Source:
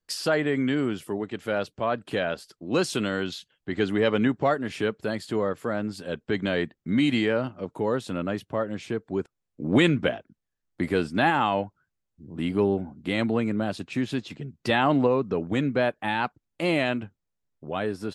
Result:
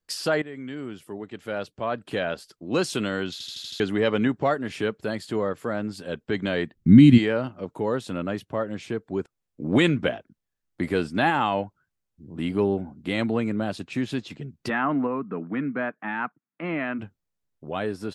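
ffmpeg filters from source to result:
ffmpeg -i in.wav -filter_complex "[0:a]asplit=3[link_01][link_02][link_03];[link_01]afade=type=out:start_time=6.75:duration=0.02[link_04];[link_02]asubboost=boost=9:cutoff=230,afade=type=in:start_time=6.75:duration=0.02,afade=type=out:start_time=7.17:duration=0.02[link_05];[link_03]afade=type=in:start_time=7.17:duration=0.02[link_06];[link_04][link_05][link_06]amix=inputs=3:normalize=0,asplit=3[link_07][link_08][link_09];[link_07]afade=type=out:start_time=14.68:duration=0.02[link_10];[link_08]highpass=frequency=170:width=0.5412,highpass=frequency=170:width=1.3066,equalizer=frequency=380:width_type=q:width=4:gain=-7,equalizer=frequency=550:width_type=q:width=4:gain=-10,equalizer=frequency=820:width_type=q:width=4:gain=-6,equalizer=frequency=1300:width_type=q:width=4:gain=3,lowpass=frequency=2100:width=0.5412,lowpass=frequency=2100:width=1.3066,afade=type=in:start_time=14.68:duration=0.02,afade=type=out:start_time=16.98:duration=0.02[link_11];[link_09]afade=type=in:start_time=16.98:duration=0.02[link_12];[link_10][link_11][link_12]amix=inputs=3:normalize=0,asplit=8[link_13][link_14][link_15][link_16][link_17][link_18][link_19][link_20];[link_13]atrim=end=0.42,asetpts=PTS-STARTPTS,afade=type=out:start_time=0.416:duration=0.004:curve=hsin:silence=0.177828[link_21];[link_14]atrim=start=0.42:end=3.402,asetpts=PTS-STARTPTS,afade=type=in:duration=1.86:silence=0.177828[link_22];[link_15]atrim=start=3.318:end=3.402[link_23];[link_16]atrim=start=3.318:end=3.402[link_24];[link_17]atrim=start=3.318:end=3.402[link_25];[link_18]atrim=start=3.318:end=3.402[link_26];[link_19]atrim=start=3.318:end=3.402[link_27];[link_20]atrim=start=3.798[link_28];[link_21][link_22]concat=n=2:v=0:a=1[link_29];[link_29][link_23]acrossfade=duration=0.004:curve1=hsin:curve2=hsin[link_30];[link_30][link_24]acrossfade=duration=0.004:curve1=hsin:curve2=hsin[link_31];[link_31][link_25]acrossfade=duration=0.004:curve1=hsin:curve2=hsin[link_32];[link_32][link_26]acrossfade=duration=0.004:curve1=hsin:curve2=hsin[link_33];[link_33][link_27]acrossfade=duration=0.004:curve1=hsin:curve2=hsin[link_34];[link_34][link_28]acrossfade=duration=0.004:curve1=hsin:curve2=hsin" out.wav

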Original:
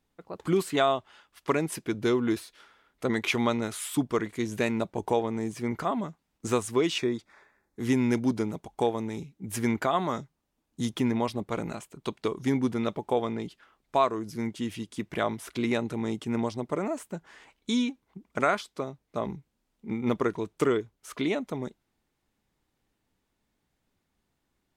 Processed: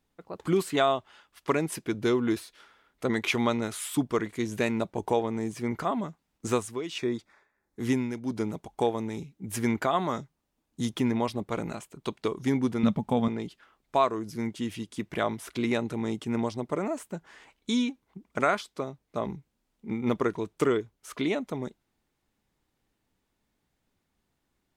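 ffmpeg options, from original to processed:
ffmpeg -i in.wav -filter_complex "[0:a]asettb=1/sr,asplit=3[link_01][link_02][link_03];[link_01]atrim=end=6.504[link_04];[link_02]atrim=start=6.5:end=8.58,asetpts=PTS-STARTPTS,afade=type=in:duration=0.004:curve=qsin,afade=type=out:start_time=2.076:duration=0.004:curve=qsin,tremolo=f=1.5:d=0.68[link_05];[link_03]atrim=start=8.576[link_06];[link_04][link_05]acrossfade=duration=0.004:curve1=hsin:curve2=qsin[link_07];[link_07][link_06]acrossfade=duration=0.004:curve1=qsin:curve2=hsin,asettb=1/sr,asplit=3[link_08][link_09][link_10];[link_08]atrim=end=12.834[link_11];[link_09]atrim=start=12.83:end=13.28,asetpts=PTS-STARTPTS,afade=type=in:duration=0.004:curve=qsin,afade=type=out:start_time=0.446:duration=0.004:curve=qsin,lowshelf=frequency=280:width_type=q:width=3:gain=7[link_12];[link_10]atrim=start=13.276[link_13];[link_11][link_12]acrossfade=duration=0.004:curve1=hsin:curve2=qsin[link_14];[link_14][link_13]acrossfade=duration=0.004:curve1=qsin:curve2=hsin" out.wav

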